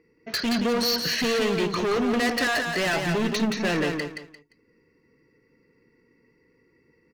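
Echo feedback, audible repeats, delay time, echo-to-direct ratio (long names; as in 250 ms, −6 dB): 26%, 3, 174 ms, −4.5 dB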